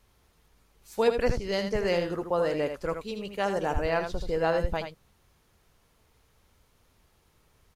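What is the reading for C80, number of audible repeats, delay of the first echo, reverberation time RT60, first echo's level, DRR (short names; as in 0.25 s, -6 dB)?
none, 1, 80 ms, none, -7.5 dB, none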